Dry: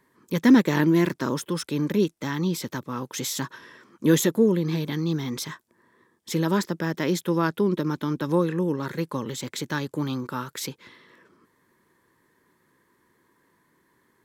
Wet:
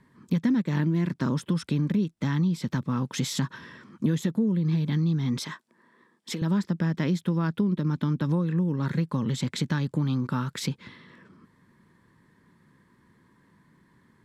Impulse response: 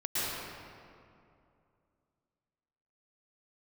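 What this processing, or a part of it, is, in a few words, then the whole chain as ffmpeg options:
jukebox: -filter_complex "[0:a]lowpass=7900,lowshelf=frequency=270:width_type=q:width=1.5:gain=8.5,acompressor=threshold=-24dB:ratio=6,asettb=1/sr,asplit=3[link_01][link_02][link_03];[link_01]atrim=end=5.394[link_04];[link_02]atrim=start=5.39:end=6.42,asetpts=PTS-STARTPTS,afade=type=in:duration=0.004:curve=qsin,afade=type=out:start_time=1.026:duration=0.004:curve=qsin,highpass=320[link_05];[link_03]atrim=start=6.416[link_06];[link_04][link_05]acrossfade=duration=0.004:curve1=hsin:curve2=qsin[link_07];[link_07][link_06]acrossfade=duration=0.004:curve1=qsin:curve2=hsin,equalizer=frequency=6400:width=3:gain=-4.5,volume=1.5dB"

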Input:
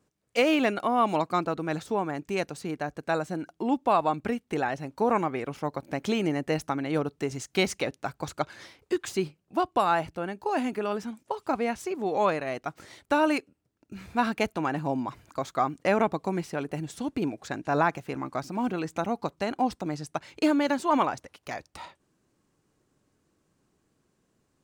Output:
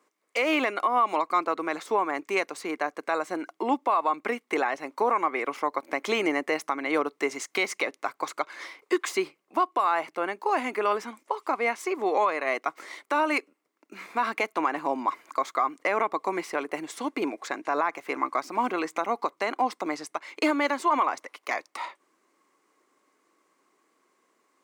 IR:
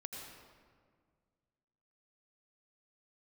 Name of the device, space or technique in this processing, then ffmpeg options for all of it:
laptop speaker: -af "highpass=frequency=300:width=0.5412,highpass=frequency=300:width=1.3066,equalizer=frequency=1100:width_type=o:width=0.39:gain=11,equalizer=frequency=2100:width_type=o:width=0.26:gain=11,alimiter=limit=-17dB:level=0:latency=1:release=202,volume=3dB"

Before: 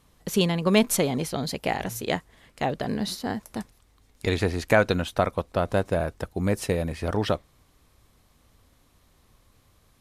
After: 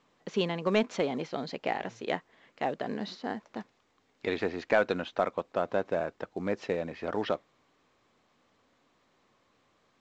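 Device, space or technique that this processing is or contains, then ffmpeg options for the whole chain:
telephone: -af "highpass=250,lowpass=3100,asoftclip=type=tanh:threshold=-8.5dB,volume=-3.5dB" -ar 16000 -c:a pcm_mulaw

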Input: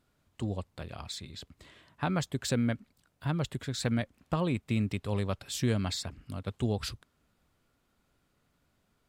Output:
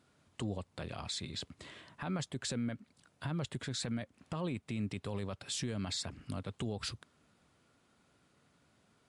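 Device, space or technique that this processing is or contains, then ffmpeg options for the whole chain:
podcast mastering chain: -af "highpass=100,acompressor=threshold=-40dB:ratio=2.5,alimiter=level_in=8.5dB:limit=-24dB:level=0:latency=1:release=10,volume=-8.5dB,volume=5dB" -ar 24000 -c:a libmp3lame -b:a 96k

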